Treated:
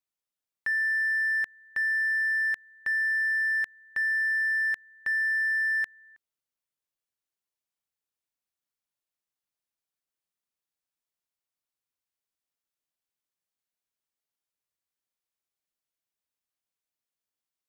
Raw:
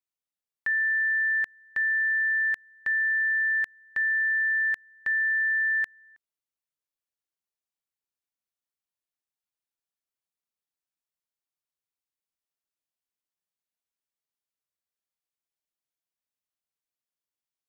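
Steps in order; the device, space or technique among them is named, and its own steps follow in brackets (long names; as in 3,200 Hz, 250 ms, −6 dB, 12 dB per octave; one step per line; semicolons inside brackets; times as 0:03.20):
parallel distortion (in parallel at −8 dB: hard clipping −34 dBFS, distortion −9 dB)
on the sum: level −2.5 dB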